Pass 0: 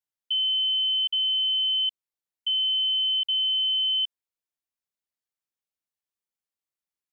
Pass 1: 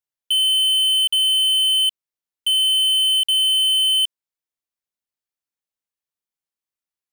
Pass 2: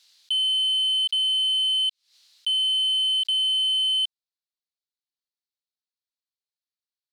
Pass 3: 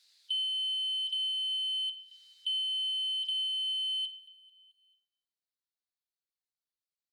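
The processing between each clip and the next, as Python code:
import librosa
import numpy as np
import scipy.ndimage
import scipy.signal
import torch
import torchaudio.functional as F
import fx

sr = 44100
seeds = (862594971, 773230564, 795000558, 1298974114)

y1 = fx.leveller(x, sr, passes=3)
y1 = F.gain(torch.from_numpy(y1), 5.5).numpy()
y2 = fx.bandpass_q(y1, sr, hz=4200.0, q=3.8)
y2 = fx.pre_swell(y2, sr, db_per_s=110.0)
y2 = F.gain(torch.from_numpy(y2), 3.5).numpy()
y3 = fx.spec_quant(y2, sr, step_db=15)
y3 = fx.echo_feedback(y3, sr, ms=220, feedback_pct=57, wet_db=-21)
y3 = fx.room_shoebox(y3, sr, seeds[0], volume_m3=720.0, walls='mixed', distance_m=0.42)
y3 = F.gain(torch.from_numpy(y3), -6.0).numpy()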